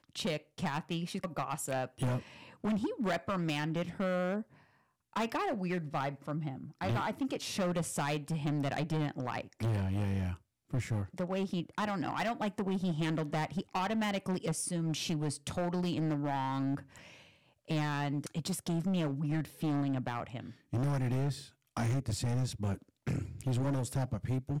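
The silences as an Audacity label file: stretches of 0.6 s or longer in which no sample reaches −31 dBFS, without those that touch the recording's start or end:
4.380000	5.160000	silence
16.750000	17.700000	silence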